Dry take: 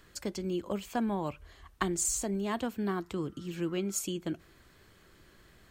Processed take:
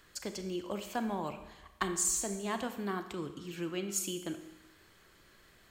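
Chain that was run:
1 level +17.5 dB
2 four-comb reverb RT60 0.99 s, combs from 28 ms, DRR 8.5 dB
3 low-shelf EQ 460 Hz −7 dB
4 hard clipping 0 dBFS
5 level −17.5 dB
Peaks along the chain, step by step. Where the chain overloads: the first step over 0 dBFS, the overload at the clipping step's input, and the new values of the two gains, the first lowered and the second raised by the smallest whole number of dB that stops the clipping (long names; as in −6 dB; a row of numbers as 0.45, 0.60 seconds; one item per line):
+4.0, +4.0, +3.5, 0.0, −17.5 dBFS
step 1, 3.5 dB
step 1 +13.5 dB, step 5 −13.5 dB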